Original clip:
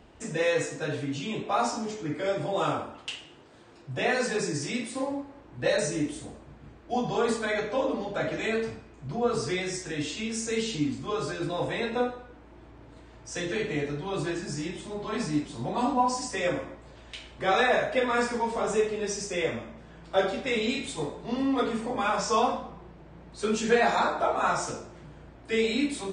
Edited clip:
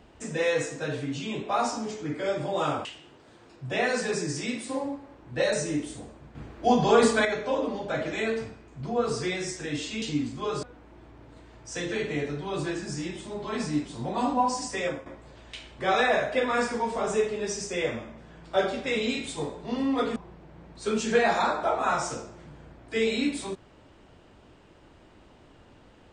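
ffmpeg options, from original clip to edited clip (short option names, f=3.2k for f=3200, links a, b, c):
-filter_complex "[0:a]asplit=8[a][b][c][d][e][f][g][h];[a]atrim=end=2.852[i];[b]atrim=start=3.108:end=6.612[j];[c]atrim=start=6.608:end=7.512,asetpts=PTS-STARTPTS,volume=7dB[k];[d]atrim=start=7.508:end=10.282[l];[e]atrim=start=10.678:end=11.292[m];[f]atrim=start=12.228:end=16.66,asetpts=PTS-STARTPTS,afade=t=out:st=4.162:d=0.27:silence=0.266073[n];[g]atrim=start=16.66:end=21.762,asetpts=PTS-STARTPTS,afade=t=in:d=0.004:c=hsin:silence=0.266073[o];[h]atrim=start=22.728[p];[i][j]acrossfade=d=0.004:c1=hsin:c2=hsin[q];[q][k]acrossfade=d=0.004:c1=hsin:c2=hsin[r];[r][l]acrossfade=d=0.004:c1=hsin:c2=hsin[s];[s][m]acrossfade=d=0.004:c1=hsin:c2=hsin[t];[n][o]concat=n=2:v=0:a=1[u];[t][u]acrossfade=d=0.004:c1=hsin:c2=hsin[v];[v][p]acrossfade=d=0.004:c1=hsin:c2=hsin"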